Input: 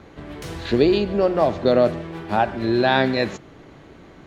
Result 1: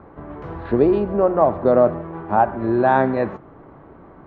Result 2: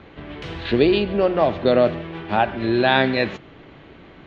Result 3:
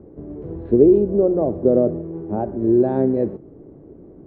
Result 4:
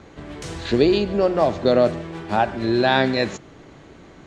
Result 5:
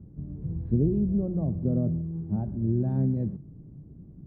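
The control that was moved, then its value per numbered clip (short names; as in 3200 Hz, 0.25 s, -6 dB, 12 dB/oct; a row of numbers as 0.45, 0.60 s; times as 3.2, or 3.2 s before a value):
synth low-pass, frequency: 1100, 3100, 410, 7900, 160 Hz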